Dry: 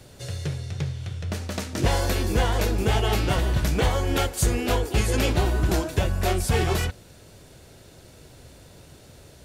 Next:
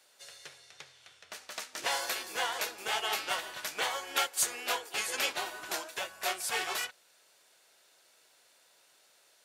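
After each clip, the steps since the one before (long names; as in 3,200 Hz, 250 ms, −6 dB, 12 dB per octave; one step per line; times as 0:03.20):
high-pass filter 950 Hz 12 dB per octave
expander for the loud parts 1.5 to 1, over −44 dBFS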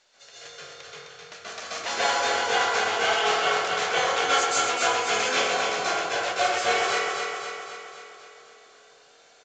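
repeating echo 259 ms, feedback 58%, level −5 dB
convolution reverb RT60 1.2 s, pre-delay 127 ms, DRR −10 dB
A-law companding 128 kbit/s 16,000 Hz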